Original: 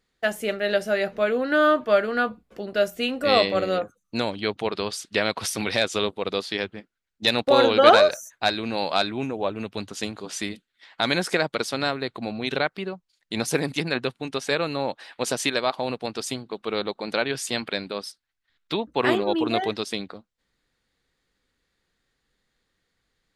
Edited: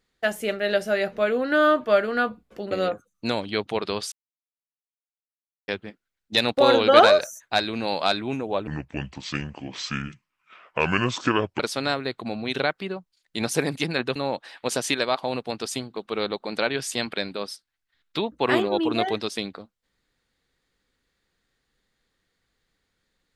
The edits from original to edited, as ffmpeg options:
ffmpeg -i in.wav -filter_complex "[0:a]asplit=7[link_01][link_02][link_03][link_04][link_05][link_06][link_07];[link_01]atrim=end=2.712[link_08];[link_02]atrim=start=3.608:end=5.02,asetpts=PTS-STARTPTS,afade=type=out:start_time=1.408:duration=0.004:curve=hsin[link_09];[link_03]atrim=start=5.02:end=6.58,asetpts=PTS-STARTPTS,volume=0[link_10];[link_04]atrim=start=6.58:end=9.574,asetpts=PTS-STARTPTS,afade=type=in:duration=0.004:curve=hsin[link_11];[link_05]atrim=start=9.57:end=11.56,asetpts=PTS-STARTPTS,asetrate=29988,aresample=44100,atrim=end_sample=129057,asetpts=PTS-STARTPTS[link_12];[link_06]atrim=start=11.556:end=14.122[link_13];[link_07]atrim=start=14.708[link_14];[link_09][link_10][link_11]concat=n=3:v=0:a=1[link_15];[link_08][link_15]acrossfade=duration=0.004:curve1=hsin:curve2=hsin[link_16];[link_16][link_12]acrossfade=duration=0.004:curve1=hsin:curve2=hsin[link_17];[link_17][link_13]acrossfade=duration=0.004:curve1=hsin:curve2=hsin[link_18];[link_18][link_14]acrossfade=duration=0.004:curve1=hsin:curve2=hsin" out.wav

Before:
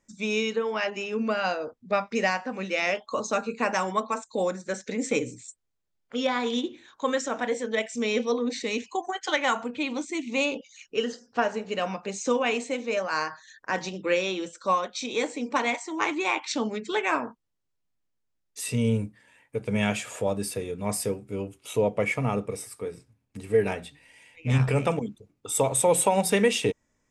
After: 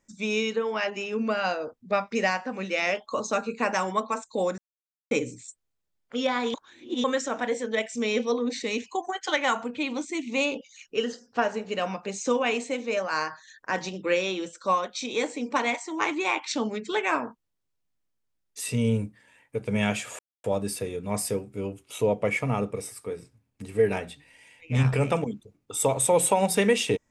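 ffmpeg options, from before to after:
ffmpeg -i in.wav -filter_complex "[0:a]asplit=6[link_01][link_02][link_03][link_04][link_05][link_06];[link_01]atrim=end=4.58,asetpts=PTS-STARTPTS,afade=type=out:start_time=4.576:duration=0.004:curve=hsin[link_07];[link_02]atrim=start=4.58:end=5.11,asetpts=PTS-STARTPTS,volume=0[link_08];[link_03]atrim=start=5.11:end=6.542,asetpts=PTS-STARTPTS,afade=type=in:duration=0.004:curve=hsin[link_09];[link_04]atrim=start=6.538:end=7.042,asetpts=PTS-STARTPTS,areverse[link_10];[link_05]atrim=start=7.038:end=20.19,asetpts=PTS-STARTPTS,afade=type=out:start_time=13.148:duration=0.004:curve=hsin,apad=pad_dur=0.25[link_11];[link_06]atrim=start=20.19,asetpts=PTS-STARTPTS,afade=type=in:duration=0.004:curve=hsin[link_12];[link_07][link_08][link_09]concat=n=3:v=0:a=1[link_13];[link_13][link_10]acrossfade=duration=0.004:curve1=hsin:curve2=hsin[link_14];[link_11][link_12]concat=n=2:v=0:a=1[link_15];[link_14][link_15]acrossfade=duration=0.004:curve1=hsin:curve2=hsin" out.wav

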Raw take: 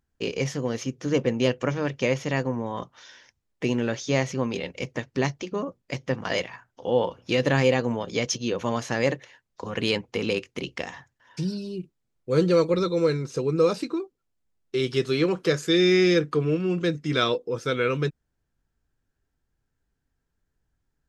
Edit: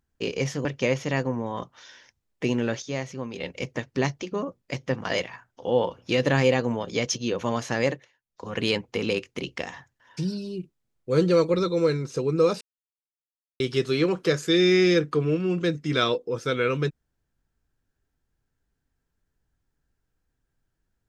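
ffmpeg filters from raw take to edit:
ffmpeg -i in.wav -filter_complex "[0:a]asplit=8[link_01][link_02][link_03][link_04][link_05][link_06][link_07][link_08];[link_01]atrim=end=0.652[link_09];[link_02]atrim=start=1.848:end=4.022[link_10];[link_03]atrim=start=4.018:end=4.602,asetpts=PTS-STARTPTS,volume=-7dB[link_11];[link_04]atrim=start=4.598:end=9.33,asetpts=PTS-STARTPTS,afade=type=out:start_time=4.432:duration=0.3:silence=0.149624[link_12];[link_05]atrim=start=9.33:end=9.45,asetpts=PTS-STARTPTS,volume=-16.5dB[link_13];[link_06]atrim=start=9.45:end=13.81,asetpts=PTS-STARTPTS,afade=type=in:duration=0.3:silence=0.149624,afade=type=out:start_time=4.356:duration=0.004:curve=hsin[link_14];[link_07]atrim=start=13.81:end=14.8,asetpts=PTS-STARTPTS,volume=0[link_15];[link_08]atrim=start=14.8,asetpts=PTS-STARTPTS,afade=type=in:duration=0.004:curve=hsin[link_16];[link_09][link_10]acrossfade=duration=0.004:curve1=hsin:curve2=hsin[link_17];[link_17][link_11]acrossfade=duration=0.004:curve1=hsin:curve2=hsin[link_18];[link_12][link_13][link_14][link_15][link_16]concat=n=5:v=0:a=1[link_19];[link_18][link_19]acrossfade=duration=0.004:curve1=hsin:curve2=hsin" out.wav

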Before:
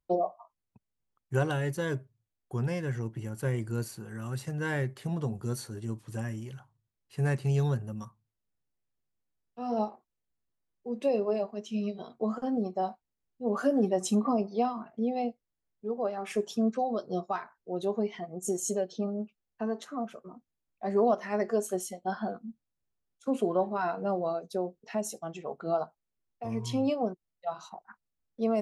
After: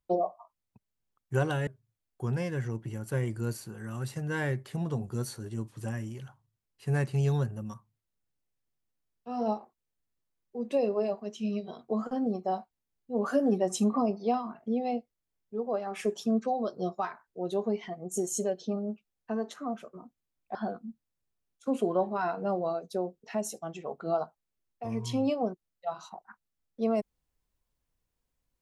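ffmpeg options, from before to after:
ffmpeg -i in.wav -filter_complex "[0:a]asplit=3[link_01][link_02][link_03];[link_01]atrim=end=1.672[link_04];[link_02]atrim=start=1.978:end=20.862[link_05];[link_03]atrim=start=22.148[link_06];[link_04][link_05]acrossfade=duration=0.004:curve1=hsin:curve2=hsin[link_07];[link_07][link_06]acrossfade=duration=0.004:curve1=hsin:curve2=hsin" out.wav

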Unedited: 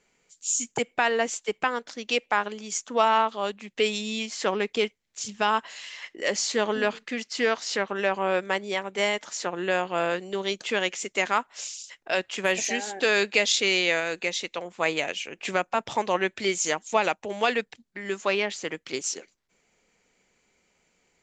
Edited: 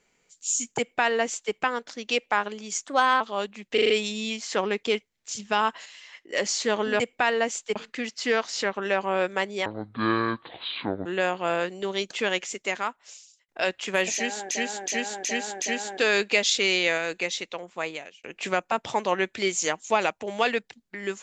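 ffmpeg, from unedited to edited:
ffmpeg -i in.wav -filter_complex "[0:a]asplit=19[link_01][link_02][link_03][link_04][link_05][link_06][link_07][link_08][link_09][link_10][link_11][link_12][link_13][link_14][link_15][link_16][link_17][link_18][link_19];[link_01]atrim=end=2.874[link_20];[link_02]atrim=start=2.87:end=3.26,asetpts=PTS-STARTPTS,asetrate=51156,aresample=44100[link_21];[link_03]atrim=start=3.256:end=3.832[link_22];[link_04]atrim=start=3.788:end=3.832[link_23];[link_05]atrim=start=3.788:end=3.832[link_24];[link_06]atrim=start=3.788:end=3.832[link_25];[link_07]atrim=start=3.788:end=5.752[link_26];[link_08]atrim=start=5.748:end=6.222,asetpts=PTS-STARTPTS,volume=-6.5dB[link_27];[link_09]atrim=start=6.218:end=6.892[link_28];[link_10]atrim=start=0.778:end=1.542[link_29];[link_11]atrim=start=6.888:end=8.794[link_30];[link_12]atrim=start=8.79:end=9.56,asetpts=PTS-STARTPTS,asetrate=24255,aresample=44100[link_31];[link_13]atrim=start=9.556:end=11.99,asetpts=PTS-STARTPTS,afade=type=out:start_time=1.314:duration=1.12[link_32];[link_14]atrim=start=11.99:end=13.012,asetpts=PTS-STARTPTS,afade=type=in:duration=0.004:curve=hsin[link_33];[link_15]atrim=start=12.638:end=13.012[link_34];[link_16]atrim=start=12.638:end=13.012[link_35];[link_17]atrim=start=12.638:end=13.012[link_36];[link_18]atrim=start=12.638:end=15.26,asetpts=PTS-STARTPTS,afade=type=out:start_time=1.472:duration=1.15:curve=qsin[link_37];[link_19]atrim=start=15.26,asetpts=PTS-STARTPTS,afade=type=in:duration=0.004:curve=hsin[link_38];[link_20][link_21]acrossfade=duration=0.004:curve1=hsin:curve2=hsin[link_39];[link_39][link_22]acrossfade=duration=0.004:curve1=hsin:curve2=hsin[link_40];[link_40][link_23]acrossfade=duration=0.004:curve1=hsin:curve2=hsin[link_41];[link_41][link_24]acrossfade=duration=0.004:curve1=hsin:curve2=hsin[link_42];[link_42][link_25]acrossfade=duration=0.004:curve1=hsin:curve2=hsin[link_43];[link_43][link_26]acrossfade=duration=0.004:curve1=hsin:curve2=hsin[link_44];[link_44][link_27]acrossfade=duration=0.004:curve1=hsin:curve2=hsin[link_45];[link_45][link_28]acrossfade=duration=0.004:curve1=hsin:curve2=hsin[link_46];[link_46][link_29]acrossfade=duration=0.004:curve1=hsin:curve2=hsin[link_47];[link_47][link_30]acrossfade=duration=0.004:curve1=hsin:curve2=hsin[link_48];[link_48][link_31]acrossfade=duration=0.004:curve1=hsin:curve2=hsin[link_49];[link_32][link_33]concat=n=2:v=0:a=1[link_50];[link_49][link_50]acrossfade=duration=0.004:curve1=hsin:curve2=hsin[link_51];[link_51][link_34]acrossfade=duration=0.004:curve1=hsin:curve2=hsin[link_52];[link_52][link_35]acrossfade=duration=0.004:curve1=hsin:curve2=hsin[link_53];[link_53][link_36]acrossfade=duration=0.004:curve1=hsin:curve2=hsin[link_54];[link_37][link_38]concat=n=2:v=0:a=1[link_55];[link_54][link_55]acrossfade=duration=0.004:curve1=hsin:curve2=hsin" out.wav

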